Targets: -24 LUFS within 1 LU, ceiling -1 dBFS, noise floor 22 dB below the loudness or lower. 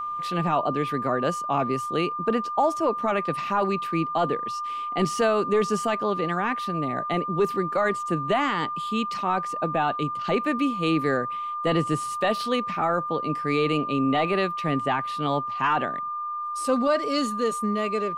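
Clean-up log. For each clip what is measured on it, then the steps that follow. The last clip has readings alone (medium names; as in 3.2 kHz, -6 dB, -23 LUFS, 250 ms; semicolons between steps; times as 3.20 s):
steady tone 1.2 kHz; tone level -28 dBFS; loudness -25.5 LUFS; peak level -13.0 dBFS; loudness target -24.0 LUFS
-> band-stop 1.2 kHz, Q 30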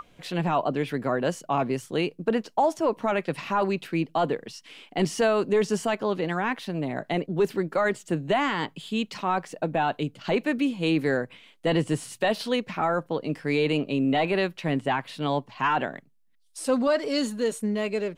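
steady tone not found; loudness -26.5 LUFS; peak level -13.0 dBFS; loudness target -24.0 LUFS
-> trim +2.5 dB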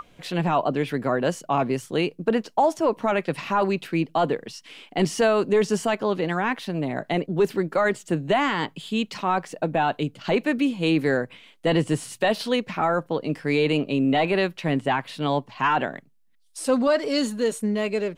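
loudness -24.0 LUFS; peak level -10.5 dBFS; noise floor -57 dBFS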